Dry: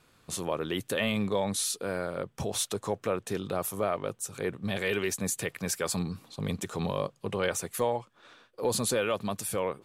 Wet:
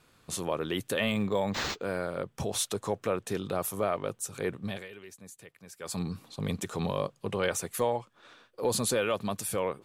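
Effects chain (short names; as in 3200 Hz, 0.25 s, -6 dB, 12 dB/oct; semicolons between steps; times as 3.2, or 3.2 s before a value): 1.11–1.85 decimation joined by straight lines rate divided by 4×; 4.58–6.07 dip -18 dB, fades 0.30 s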